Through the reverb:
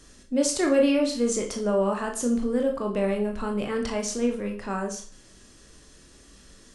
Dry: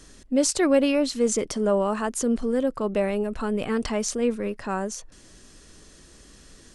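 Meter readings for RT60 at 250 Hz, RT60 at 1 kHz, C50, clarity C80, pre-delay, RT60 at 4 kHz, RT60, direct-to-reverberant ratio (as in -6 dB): 0.45 s, 0.45 s, 9.0 dB, 13.5 dB, 20 ms, 0.40 s, 0.45 s, 2.0 dB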